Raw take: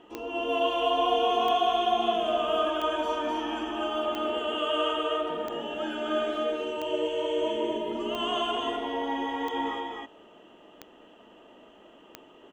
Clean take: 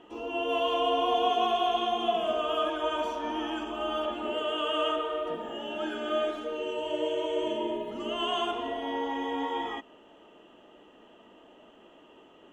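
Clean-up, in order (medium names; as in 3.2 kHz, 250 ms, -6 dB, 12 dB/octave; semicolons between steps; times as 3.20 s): de-click; inverse comb 253 ms -3 dB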